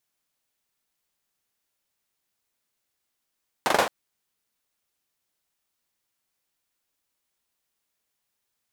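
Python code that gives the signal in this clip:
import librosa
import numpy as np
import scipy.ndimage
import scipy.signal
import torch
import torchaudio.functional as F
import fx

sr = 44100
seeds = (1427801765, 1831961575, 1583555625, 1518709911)

y = fx.drum_clap(sr, seeds[0], length_s=0.22, bursts=4, spacing_ms=42, hz=650.0, decay_s=0.35)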